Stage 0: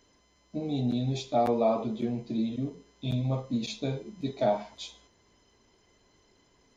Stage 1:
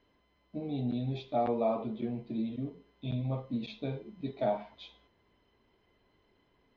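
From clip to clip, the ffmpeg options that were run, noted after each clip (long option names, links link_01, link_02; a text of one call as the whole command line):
ffmpeg -i in.wav -af "lowpass=frequency=3500:width=0.5412,lowpass=frequency=3500:width=1.3066,volume=-4.5dB" out.wav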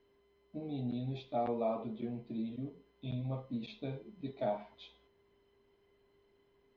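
ffmpeg -i in.wav -af "aeval=exprs='val(0)+0.000562*sin(2*PI*400*n/s)':channel_layout=same,volume=-4.5dB" out.wav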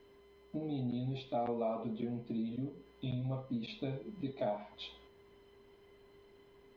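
ffmpeg -i in.wav -af "acompressor=threshold=-50dB:ratio=2,volume=9dB" out.wav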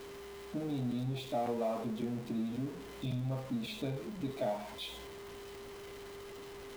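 ffmpeg -i in.wav -af "aeval=exprs='val(0)+0.5*0.00668*sgn(val(0))':channel_layout=same" out.wav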